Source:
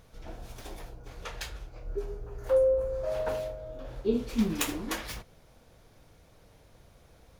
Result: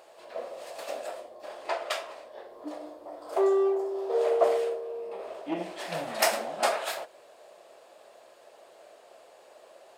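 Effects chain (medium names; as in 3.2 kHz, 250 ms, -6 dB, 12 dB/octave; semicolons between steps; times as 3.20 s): in parallel at -3 dB: hard clipper -25 dBFS, distortion -10 dB; on the sum: resonant high-pass 840 Hz, resonance Q 5.6; speed mistake 45 rpm record played at 33 rpm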